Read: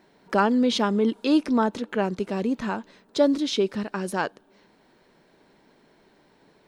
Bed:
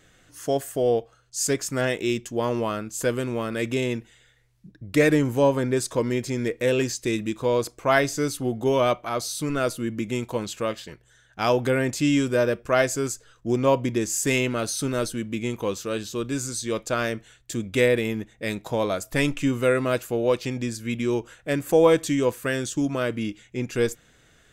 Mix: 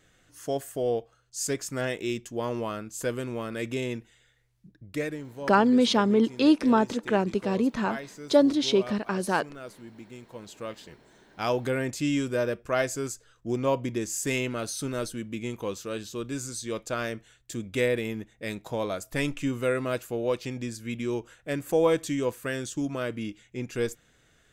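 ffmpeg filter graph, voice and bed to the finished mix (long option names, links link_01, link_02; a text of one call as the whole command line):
ffmpeg -i stem1.wav -i stem2.wav -filter_complex "[0:a]adelay=5150,volume=0.5dB[link_01];[1:a]volume=6.5dB,afade=type=out:start_time=4.65:duration=0.52:silence=0.251189,afade=type=in:start_time=10.28:duration=0.82:silence=0.251189[link_02];[link_01][link_02]amix=inputs=2:normalize=0" out.wav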